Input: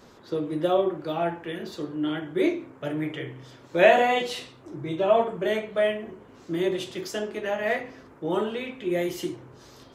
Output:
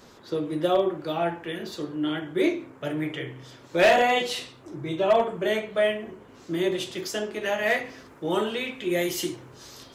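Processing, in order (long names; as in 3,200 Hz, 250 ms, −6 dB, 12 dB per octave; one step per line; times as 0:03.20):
high-shelf EQ 2,200 Hz +4.5 dB, from 0:07.41 +10 dB
hard clipping −13 dBFS, distortion −16 dB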